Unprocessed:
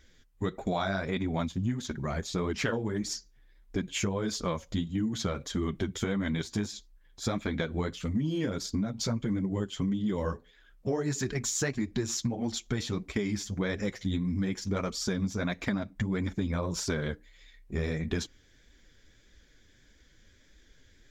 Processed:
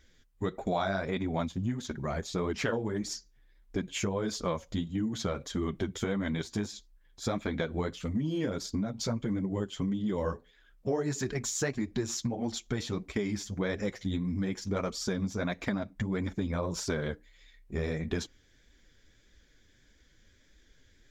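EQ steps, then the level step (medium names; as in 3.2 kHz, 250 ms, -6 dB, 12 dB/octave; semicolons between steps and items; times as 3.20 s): dynamic bell 630 Hz, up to +4 dB, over -42 dBFS, Q 0.74; -2.5 dB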